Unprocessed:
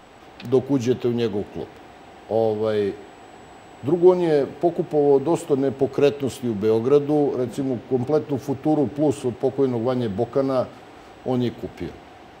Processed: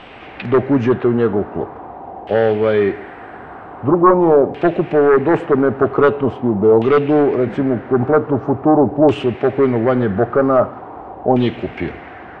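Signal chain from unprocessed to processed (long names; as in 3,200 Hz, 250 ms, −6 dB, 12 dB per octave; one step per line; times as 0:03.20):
0:05.79–0:06.85: dynamic equaliser 3,100 Hz, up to +8 dB, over −46 dBFS, Q 1.7
sine wavefolder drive 8 dB, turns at −3.5 dBFS
auto-filter low-pass saw down 0.44 Hz 780–2,900 Hz
level −4 dB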